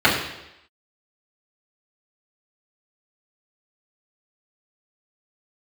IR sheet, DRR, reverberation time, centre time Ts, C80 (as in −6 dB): −9.0 dB, 0.85 s, 40 ms, 7.0 dB